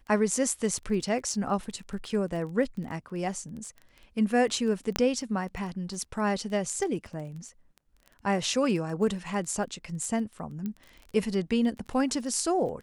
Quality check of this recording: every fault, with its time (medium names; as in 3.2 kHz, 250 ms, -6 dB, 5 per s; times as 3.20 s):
crackle 17 per s -37 dBFS
4.96 s: pop -10 dBFS
10.66 s: pop -22 dBFS